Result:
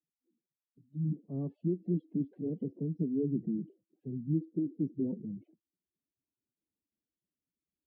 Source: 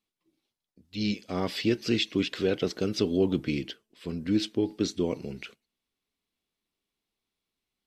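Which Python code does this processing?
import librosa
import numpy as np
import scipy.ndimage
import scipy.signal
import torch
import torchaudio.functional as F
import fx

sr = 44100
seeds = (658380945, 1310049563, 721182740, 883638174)

y = fx.spec_gate(x, sr, threshold_db=-15, keep='strong')
y = fx.tilt_eq(y, sr, slope=-3.5)
y = fx.rider(y, sr, range_db=4, speed_s=2.0)
y = fx.pitch_keep_formants(y, sr, semitones=7.0)
y = fx.ladder_bandpass(y, sr, hz=230.0, resonance_pct=20)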